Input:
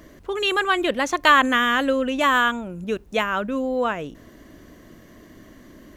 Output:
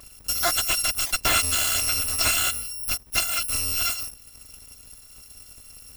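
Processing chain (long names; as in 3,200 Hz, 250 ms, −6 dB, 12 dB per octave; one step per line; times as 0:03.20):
samples in bit-reversed order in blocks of 256 samples
transient designer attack +4 dB, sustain −2 dB
slew-rate limiting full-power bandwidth 770 Hz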